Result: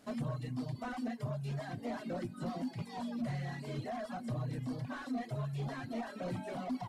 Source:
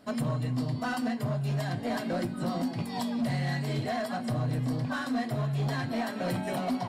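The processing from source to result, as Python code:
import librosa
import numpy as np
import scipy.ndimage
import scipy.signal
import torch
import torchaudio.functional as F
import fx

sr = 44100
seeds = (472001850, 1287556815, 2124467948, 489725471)

y = fx.delta_mod(x, sr, bps=64000, step_db=-53.0)
y = fx.dereverb_blind(y, sr, rt60_s=1.1)
y = F.gain(torch.from_numpy(y), -6.0).numpy()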